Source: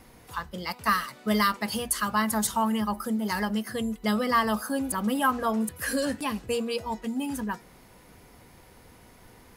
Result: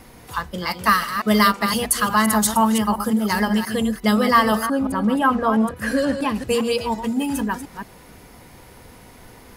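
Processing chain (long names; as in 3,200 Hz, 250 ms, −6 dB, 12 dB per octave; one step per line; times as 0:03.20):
delay that plays each chunk backwards 174 ms, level −8.5 dB
0:04.65–0:06.34: low-pass filter 1,400 Hz → 2,500 Hz 6 dB per octave
level +7.5 dB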